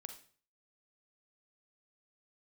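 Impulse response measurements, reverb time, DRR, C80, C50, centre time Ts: 0.45 s, 6.5 dB, 13.5 dB, 8.5 dB, 13 ms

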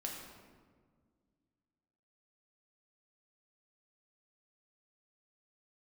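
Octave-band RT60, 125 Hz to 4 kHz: 2.5 s, 2.6 s, 1.9 s, 1.5 s, 1.2 s, 0.95 s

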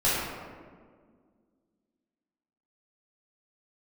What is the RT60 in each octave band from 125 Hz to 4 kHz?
2.0 s, 2.7 s, 2.0 s, 1.6 s, 1.3 s, 0.85 s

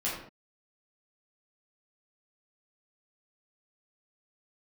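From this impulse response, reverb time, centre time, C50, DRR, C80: no single decay rate, 47 ms, 2.5 dB, -8.0 dB, 6.0 dB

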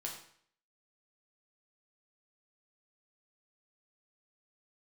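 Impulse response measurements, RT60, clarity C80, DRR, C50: 0.60 s, 9.0 dB, -1.5 dB, 5.5 dB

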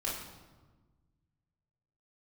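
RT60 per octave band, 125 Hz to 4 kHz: 2.4 s, 1.8 s, 1.4 s, 1.3 s, 0.95 s, 0.85 s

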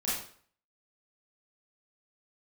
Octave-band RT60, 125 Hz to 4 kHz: 0.55 s, 0.50 s, 0.50 s, 0.50 s, 0.45 s, 0.45 s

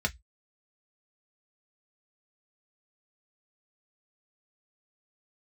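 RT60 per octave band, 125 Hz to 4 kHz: 0.25 s, 0.10 s, 0.10 s, 0.10 s, 0.15 s, 0.15 s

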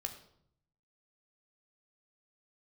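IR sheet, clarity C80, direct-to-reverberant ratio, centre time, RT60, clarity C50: 13.0 dB, 4.5 dB, 13 ms, 0.65 s, 10.5 dB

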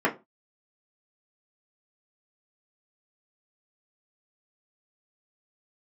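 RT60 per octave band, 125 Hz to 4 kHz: 0.30 s, 0.30 s, 0.25 s, 0.25 s, 0.20 s, 0.20 s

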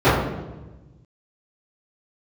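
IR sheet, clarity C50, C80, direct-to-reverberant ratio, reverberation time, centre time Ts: 1.0 dB, 4.0 dB, -18.0 dB, 1.1 s, 68 ms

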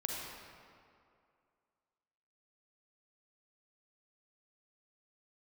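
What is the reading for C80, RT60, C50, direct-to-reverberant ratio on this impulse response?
0.5 dB, 2.4 s, -1.0 dB, -2.0 dB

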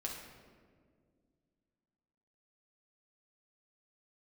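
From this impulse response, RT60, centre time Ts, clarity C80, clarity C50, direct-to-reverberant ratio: 1.9 s, 56 ms, 5.5 dB, 3.0 dB, -2.0 dB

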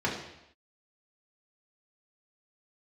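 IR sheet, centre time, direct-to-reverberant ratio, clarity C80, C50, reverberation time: 38 ms, -4.5 dB, 8.0 dB, 5.0 dB, no single decay rate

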